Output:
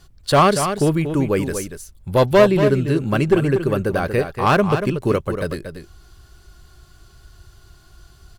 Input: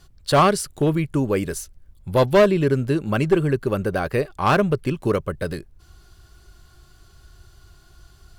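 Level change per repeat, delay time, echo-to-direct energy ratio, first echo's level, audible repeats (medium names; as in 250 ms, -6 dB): no regular repeats, 235 ms, -8.5 dB, -8.5 dB, 1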